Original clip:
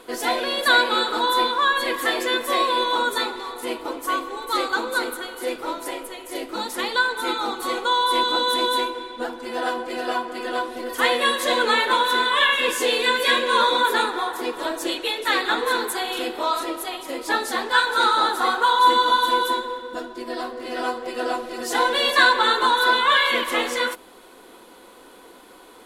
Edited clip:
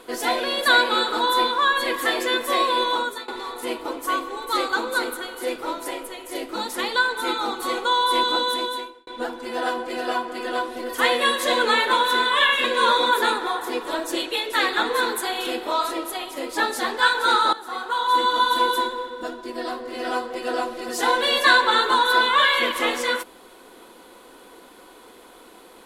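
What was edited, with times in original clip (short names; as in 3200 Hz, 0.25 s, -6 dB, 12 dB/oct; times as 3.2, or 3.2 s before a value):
2.9–3.28 fade out, to -20.5 dB
8.33–9.07 fade out
12.64–13.36 cut
18.25–19.3 fade in, from -16 dB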